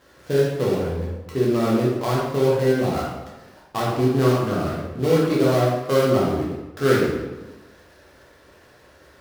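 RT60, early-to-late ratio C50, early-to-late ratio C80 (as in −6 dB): 1.1 s, 0.5 dB, 3.0 dB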